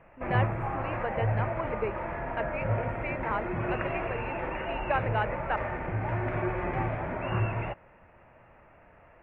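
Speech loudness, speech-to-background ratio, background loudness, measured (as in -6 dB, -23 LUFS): -36.0 LUFS, -4.0 dB, -32.0 LUFS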